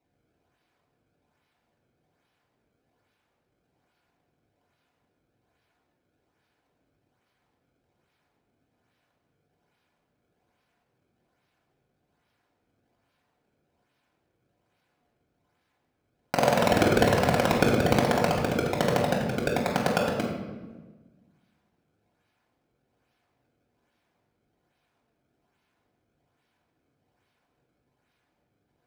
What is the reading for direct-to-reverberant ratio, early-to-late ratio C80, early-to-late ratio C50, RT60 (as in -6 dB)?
-2.5 dB, 5.0 dB, 3.0 dB, 1.3 s